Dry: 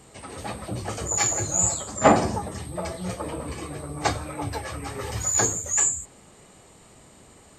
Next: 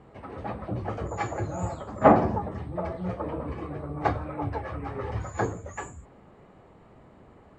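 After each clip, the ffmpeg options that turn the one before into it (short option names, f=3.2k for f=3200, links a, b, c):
-af "lowpass=1.5k"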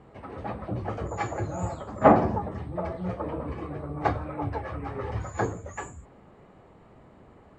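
-af anull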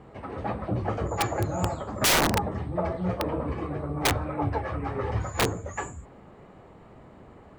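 -af "aeval=exprs='(mod(8.91*val(0)+1,2)-1)/8.91':c=same,volume=3.5dB"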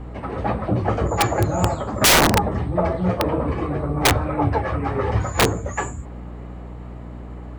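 -af "aeval=exprs='val(0)+0.00891*(sin(2*PI*60*n/s)+sin(2*PI*2*60*n/s)/2+sin(2*PI*3*60*n/s)/3+sin(2*PI*4*60*n/s)/4+sin(2*PI*5*60*n/s)/5)':c=same,volume=7.5dB"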